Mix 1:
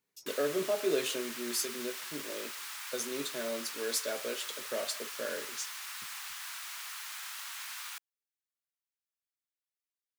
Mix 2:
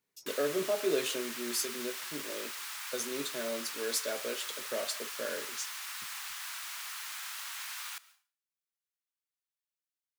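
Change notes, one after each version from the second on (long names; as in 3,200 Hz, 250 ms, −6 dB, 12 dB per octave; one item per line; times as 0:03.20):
background: send on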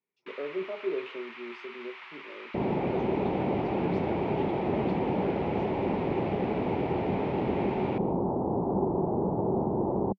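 speech −7.5 dB
second sound: unmuted
master: add loudspeaker in its box 130–2,700 Hz, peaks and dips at 190 Hz +5 dB, 380 Hz +8 dB, 950 Hz +3 dB, 1,600 Hz −6 dB, 2,300 Hz +5 dB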